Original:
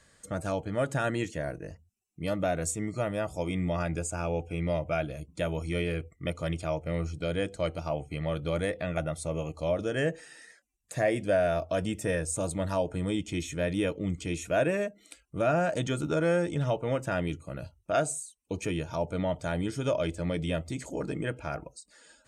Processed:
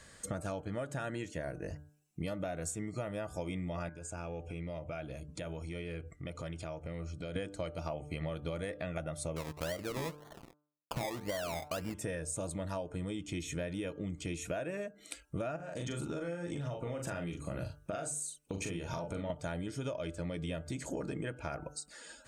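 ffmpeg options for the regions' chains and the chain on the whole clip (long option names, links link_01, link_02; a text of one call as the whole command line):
ffmpeg -i in.wav -filter_complex "[0:a]asettb=1/sr,asplit=3[link_01][link_02][link_03];[link_01]atrim=end=3.894[link_04];[link_02]atrim=start=3.89:end=7.36,asetpts=PTS-STARTPTS,afade=type=in:duration=0.004:curve=qsin,afade=type=out:start_time=3.466:duration=0.004:curve=qsin,lowpass=10000,acompressor=threshold=-46dB:ratio=4:attack=3.2:release=140:knee=1:detection=peak[link_05];[link_03]atrim=start=7.356[link_06];[link_04][link_05]acrossfade=duration=0.004:curve1=hsin:curve2=qsin[link_07];[link_07][link_06]acrossfade=duration=0.004:curve1=qsin:curve2=hsin,asettb=1/sr,asplit=3[link_08][link_09][link_10];[link_08]atrim=end=9.364[link_11];[link_09]atrim=start=9.36:end=11.94,asetpts=PTS-STARTPTS,afade=type=in:duration=0.004:curve=qsin,afade=type=out:start_time=2.576:duration=0.004:curve=qsin,acrusher=samples=24:mix=1:aa=0.000001:lfo=1:lforange=14.4:lforate=1.9,aeval=exprs='sgn(val(0))*max(abs(val(0))-0.00251,0)':channel_layout=same[link_12];[link_10]atrim=start=11.936[link_13];[link_11][link_12]acrossfade=duration=0.004:curve1=hsin:curve2=qsin[link_14];[link_14][link_13]acrossfade=duration=0.004:curve1=qsin:curve2=hsin,asettb=1/sr,asplit=3[link_15][link_16][link_17];[link_15]atrim=end=15.564[link_18];[link_16]atrim=start=15.56:end=19.3,asetpts=PTS-STARTPTS,afade=type=in:duration=0.004:curve=qsin,afade=type=out:start_time=3.736:duration=0.004:curve=qsin,acompressor=threshold=-36dB:ratio=10:attack=3.2:release=140:knee=1:detection=peak,asplit=2[link_19][link_20];[link_20]adelay=41,volume=-4.5dB[link_21];[link_19][link_21]amix=inputs=2:normalize=0,atrim=end_sample=164934[link_22];[link_17]atrim=start=19.296[link_23];[link_18][link_22]acrossfade=duration=0.004:curve1=hsin:curve2=qsin[link_24];[link_24][link_23]acrossfade=duration=0.004:curve1=qsin:curve2=hsin,bandreject=frequency=148.6:width_type=h:width=4,bandreject=frequency=297.2:width_type=h:width=4,bandreject=frequency=445.8:width_type=h:width=4,bandreject=frequency=594.4:width_type=h:width=4,bandreject=frequency=743:width_type=h:width=4,bandreject=frequency=891.6:width_type=h:width=4,bandreject=frequency=1040.2:width_type=h:width=4,bandreject=frequency=1188.8:width_type=h:width=4,bandreject=frequency=1337.4:width_type=h:width=4,bandreject=frequency=1486:width_type=h:width=4,bandreject=frequency=1634.6:width_type=h:width=4,acompressor=threshold=-40dB:ratio=16,volume=5.5dB" out.wav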